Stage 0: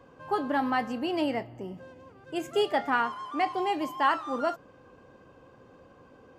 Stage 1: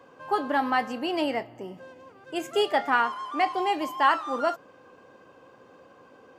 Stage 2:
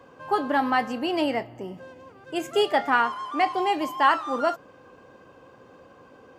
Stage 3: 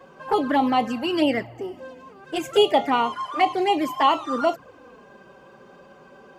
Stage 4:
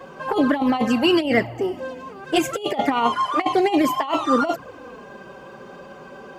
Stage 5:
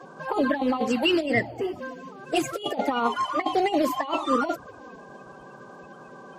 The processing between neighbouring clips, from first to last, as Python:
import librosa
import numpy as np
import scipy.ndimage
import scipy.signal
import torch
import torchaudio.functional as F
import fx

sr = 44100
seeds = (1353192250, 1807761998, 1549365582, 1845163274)

y1 = fx.highpass(x, sr, hz=380.0, slope=6)
y1 = y1 * 10.0 ** (4.0 / 20.0)
y2 = fx.low_shelf(y1, sr, hz=110.0, db=10.5)
y2 = y2 * 10.0 ** (1.5 / 20.0)
y3 = fx.env_flanger(y2, sr, rest_ms=5.8, full_db=-19.5)
y3 = y3 * 10.0 ** (6.0 / 20.0)
y4 = fx.over_compress(y3, sr, threshold_db=-23.0, ratio=-0.5)
y4 = y4 * 10.0 ** (5.0 / 20.0)
y5 = fx.spec_quant(y4, sr, step_db=30)
y5 = y5 * 10.0 ** (-4.0 / 20.0)